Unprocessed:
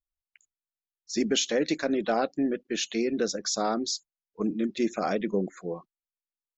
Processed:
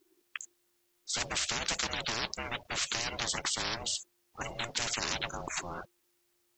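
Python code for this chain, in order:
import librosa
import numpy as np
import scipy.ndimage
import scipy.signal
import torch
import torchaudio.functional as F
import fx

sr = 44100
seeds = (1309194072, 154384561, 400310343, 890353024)

y = x * np.sin(2.0 * np.pi * 350.0 * np.arange(len(x)) / sr)
y = fx.spectral_comp(y, sr, ratio=10.0)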